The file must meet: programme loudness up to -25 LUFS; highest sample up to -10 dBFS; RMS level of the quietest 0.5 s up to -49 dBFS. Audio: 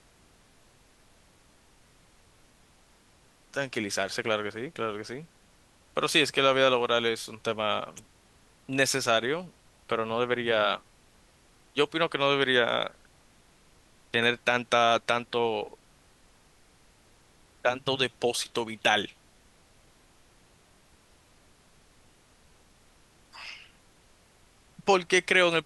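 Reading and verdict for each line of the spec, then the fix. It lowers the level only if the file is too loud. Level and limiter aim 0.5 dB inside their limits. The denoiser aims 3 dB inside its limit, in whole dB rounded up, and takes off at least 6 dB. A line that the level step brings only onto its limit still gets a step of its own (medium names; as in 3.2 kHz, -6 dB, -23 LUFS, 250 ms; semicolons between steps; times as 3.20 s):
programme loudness -27.0 LUFS: pass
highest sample -7.5 dBFS: fail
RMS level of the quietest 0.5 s -61 dBFS: pass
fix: peak limiter -10.5 dBFS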